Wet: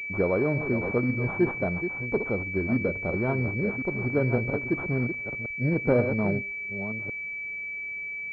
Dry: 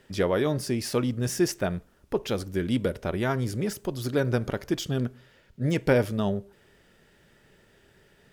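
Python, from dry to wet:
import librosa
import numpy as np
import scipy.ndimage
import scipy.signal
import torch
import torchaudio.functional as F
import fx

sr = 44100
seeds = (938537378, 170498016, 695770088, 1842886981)

y = fx.reverse_delay(x, sr, ms=546, wet_db=-8.5)
y = fx.pwm(y, sr, carrier_hz=2300.0)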